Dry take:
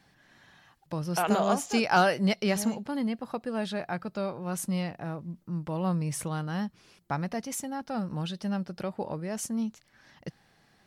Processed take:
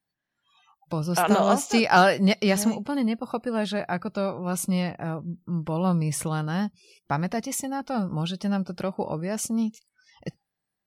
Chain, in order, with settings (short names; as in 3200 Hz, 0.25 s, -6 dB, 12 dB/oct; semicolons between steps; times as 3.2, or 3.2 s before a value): spectral noise reduction 29 dB; gain +5 dB